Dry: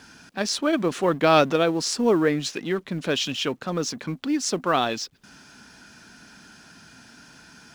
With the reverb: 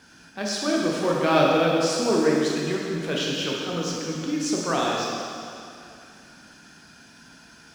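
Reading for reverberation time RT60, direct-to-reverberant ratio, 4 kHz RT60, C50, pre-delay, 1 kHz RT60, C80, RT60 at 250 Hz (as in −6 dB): 2.5 s, −3.5 dB, 2.3 s, −1.0 dB, 8 ms, 2.5 s, 0.5 dB, 2.5 s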